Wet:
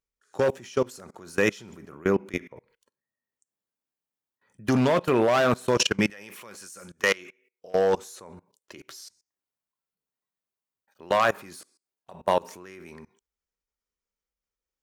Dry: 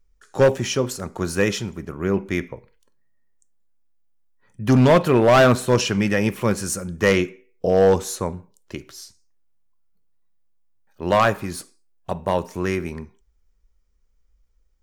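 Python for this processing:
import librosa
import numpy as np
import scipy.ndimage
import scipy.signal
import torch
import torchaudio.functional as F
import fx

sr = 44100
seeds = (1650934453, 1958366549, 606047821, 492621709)

y = fx.highpass(x, sr, hz=fx.steps((0.0, 300.0), (6.1, 1300.0), (7.75, 450.0)), slope=6)
y = fx.level_steps(y, sr, step_db=24)
y = y * librosa.db_to_amplitude(3.5)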